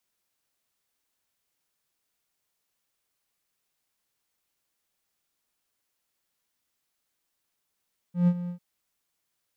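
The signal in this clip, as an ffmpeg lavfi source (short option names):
-f lavfi -i "aevalsrc='0.2*(1-4*abs(mod(176*t+0.25,1)-0.5))':d=0.447:s=44100,afade=t=in:d=0.135,afade=t=out:st=0.135:d=0.059:silence=0.2,afade=t=out:st=0.35:d=0.097"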